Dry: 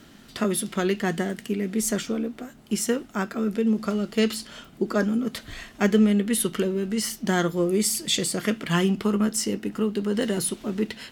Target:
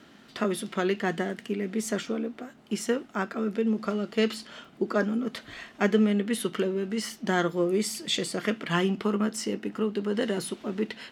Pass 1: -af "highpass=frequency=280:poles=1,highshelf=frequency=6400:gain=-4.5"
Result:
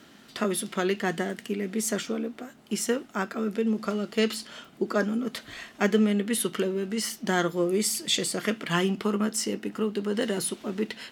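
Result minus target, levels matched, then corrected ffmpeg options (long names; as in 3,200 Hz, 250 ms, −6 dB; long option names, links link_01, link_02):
8,000 Hz band +6.0 dB
-af "highpass=frequency=280:poles=1,highshelf=frequency=6400:gain=-15"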